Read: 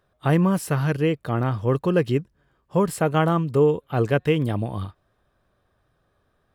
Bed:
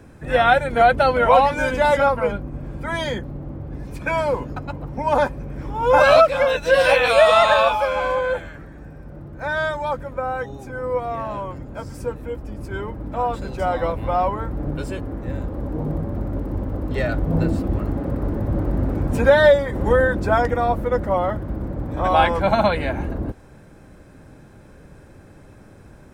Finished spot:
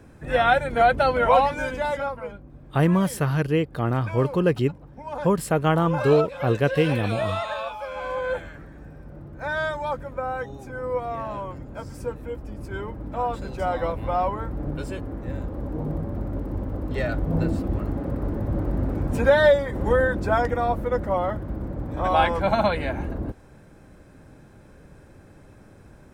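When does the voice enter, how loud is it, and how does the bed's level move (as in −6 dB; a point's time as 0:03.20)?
2.50 s, −0.5 dB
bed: 0:01.37 −3.5 dB
0:02.36 −14.5 dB
0:07.75 −14.5 dB
0:08.35 −3.5 dB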